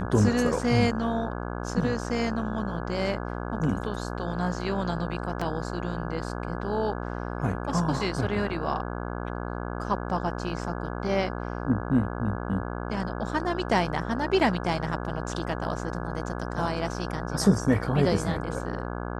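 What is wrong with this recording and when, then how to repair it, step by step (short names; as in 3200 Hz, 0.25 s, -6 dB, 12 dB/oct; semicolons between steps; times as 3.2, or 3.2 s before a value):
buzz 60 Hz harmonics 28 -33 dBFS
5.41 gap 4.7 ms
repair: de-hum 60 Hz, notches 28; interpolate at 5.41, 4.7 ms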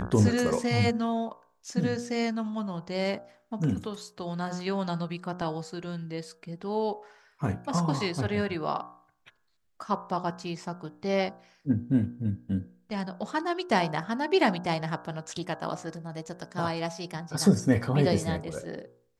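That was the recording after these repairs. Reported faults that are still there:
none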